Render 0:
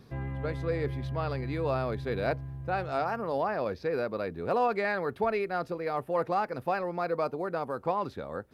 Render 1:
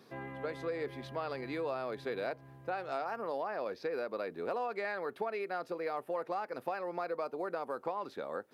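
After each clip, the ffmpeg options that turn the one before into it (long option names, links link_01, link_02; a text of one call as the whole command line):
ffmpeg -i in.wav -af "highpass=310,acompressor=threshold=-33dB:ratio=6" out.wav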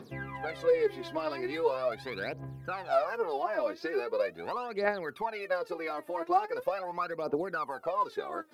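ffmpeg -i in.wav -af "aphaser=in_gain=1:out_gain=1:delay=3.4:decay=0.79:speed=0.41:type=triangular,volume=1.5dB" out.wav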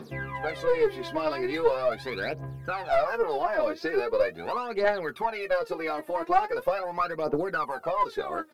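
ffmpeg -i in.wav -filter_complex "[0:a]aeval=exprs='(tanh(7.94*val(0)+0.35)-tanh(0.35))/7.94':channel_layout=same,asplit=2[link_01][link_02];[link_02]adelay=13,volume=-7.5dB[link_03];[link_01][link_03]amix=inputs=2:normalize=0,volume=5.5dB" out.wav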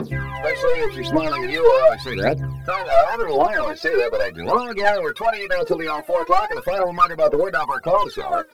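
ffmpeg -i in.wav -filter_complex "[0:a]asplit=2[link_01][link_02];[link_02]asoftclip=type=hard:threshold=-24.5dB,volume=-3.5dB[link_03];[link_01][link_03]amix=inputs=2:normalize=0,aphaser=in_gain=1:out_gain=1:delay=2.1:decay=0.72:speed=0.88:type=triangular,volume=2dB" out.wav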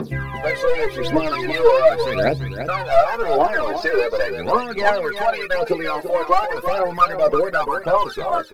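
ffmpeg -i in.wav -af "aecho=1:1:339:0.335" out.wav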